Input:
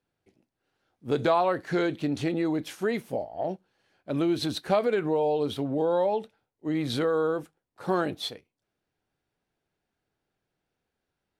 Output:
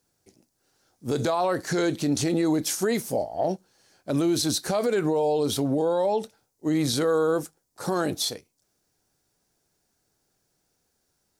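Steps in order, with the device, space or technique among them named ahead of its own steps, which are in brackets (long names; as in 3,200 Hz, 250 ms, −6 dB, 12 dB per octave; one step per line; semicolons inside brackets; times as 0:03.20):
over-bright horn tweeter (high shelf with overshoot 4,200 Hz +11.5 dB, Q 1.5; brickwall limiter −22 dBFS, peak gain reduction 11 dB)
level +6 dB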